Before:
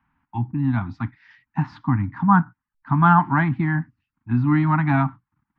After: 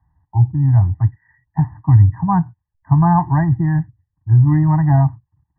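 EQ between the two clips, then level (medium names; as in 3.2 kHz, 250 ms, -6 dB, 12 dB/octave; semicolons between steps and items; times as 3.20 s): brick-wall FIR low-pass 2 kHz; peaking EQ 87 Hz +15 dB 1.9 oct; static phaser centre 570 Hz, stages 4; +4.5 dB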